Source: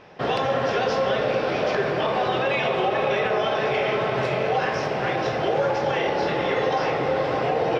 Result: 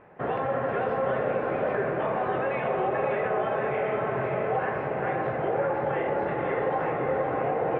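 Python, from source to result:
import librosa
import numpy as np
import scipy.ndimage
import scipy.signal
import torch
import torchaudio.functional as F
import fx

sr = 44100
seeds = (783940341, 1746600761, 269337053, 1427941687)

y = scipy.signal.sosfilt(scipy.signal.butter(4, 2000.0, 'lowpass', fs=sr, output='sos'), x)
y = y + 10.0 ** (-8.0 / 20.0) * np.pad(y, (int(522 * sr / 1000.0), 0))[:len(y)]
y = F.gain(torch.from_numpy(y), -4.5).numpy()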